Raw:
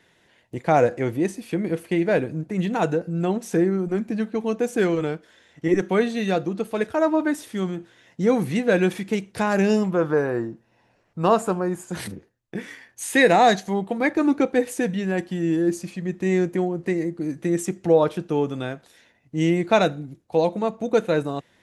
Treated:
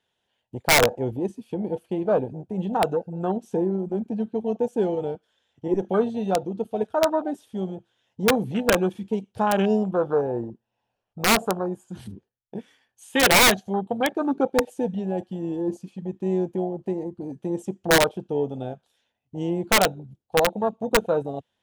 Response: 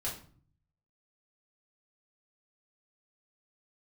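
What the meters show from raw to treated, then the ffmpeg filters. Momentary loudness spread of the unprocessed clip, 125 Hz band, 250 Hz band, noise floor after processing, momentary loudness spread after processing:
12 LU, −4.0 dB, −4.0 dB, −79 dBFS, 15 LU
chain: -af "afwtdn=0.0562,equalizer=frequency=160:width_type=o:width=0.33:gain=-8,equalizer=frequency=315:width_type=o:width=0.33:gain=-8,equalizer=frequency=800:width_type=o:width=0.33:gain=5,equalizer=frequency=2000:width_type=o:width=0.33:gain=-9,equalizer=frequency=3150:width_type=o:width=0.33:gain=8,aeval=exprs='(mod(3.35*val(0)+1,2)-1)/3.35':channel_layout=same"

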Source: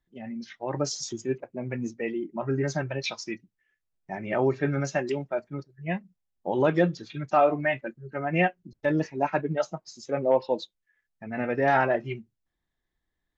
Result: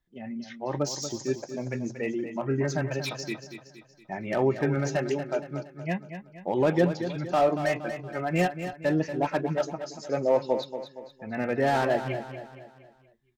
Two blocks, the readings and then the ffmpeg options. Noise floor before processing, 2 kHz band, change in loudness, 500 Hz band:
−82 dBFS, −2.5 dB, −0.5 dB, 0.0 dB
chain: -filter_complex "[0:a]acrossover=split=740[link_01][link_02];[link_02]asoftclip=type=hard:threshold=-29.5dB[link_03];[link_01][link_03]amix=inputs=2:normalize=0,aecho=1:1:234|468|702|936|1170:0.316|0.142|0.064|0.0288|0.013"

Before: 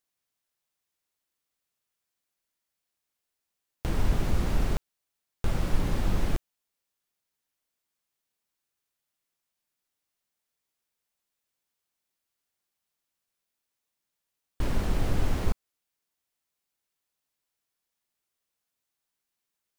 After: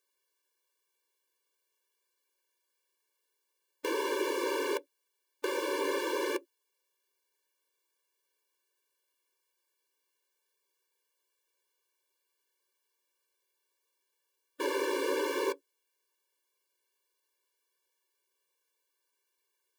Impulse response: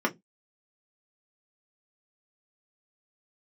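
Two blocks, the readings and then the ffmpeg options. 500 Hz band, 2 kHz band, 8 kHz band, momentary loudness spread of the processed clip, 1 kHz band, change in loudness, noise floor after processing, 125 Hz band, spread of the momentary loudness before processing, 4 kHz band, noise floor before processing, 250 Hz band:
+7.5 dB, +5.0 dB, +2.5 dB, 7 LU, +3.5 dB, −1.0 dB, −82 dBFS, below −40 dB, 8 LU, +3.5 dB, −85 dBFS, −3.0 dB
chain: -filter_complex "[0:a]asplit=2[link_01][link_02];[1:a]atrim=start_sample=2205,afade=type=out:start_time=0.19:duration=0.01,atrim=end_sample=8820,asetrate=70560,aresample=44100[link_03];[link_02][link_03]afir=irnorm=-1:irlink=0,volume=-16dB[link_04];[link_01][link_04]amix=inputs=2:normalize=0,afftfilt=real='re*eq(mod(floor(b*sr/1024/300),2),1)':imag='im*eq(mod(floor(b*sr/1024/300),2),1)':win_size=1024:overlap=0.75,volume=5.5dB"

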